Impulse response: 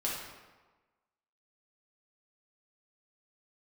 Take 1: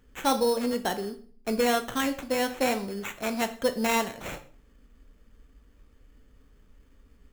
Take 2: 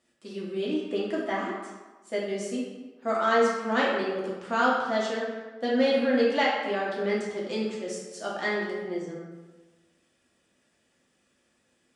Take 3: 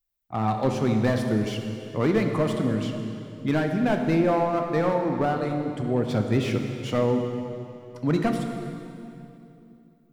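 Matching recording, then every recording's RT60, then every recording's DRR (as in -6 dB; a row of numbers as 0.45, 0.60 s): 2; 0.45, 1.3, 2.8 s; 7.5, -5.5, 3.5 dB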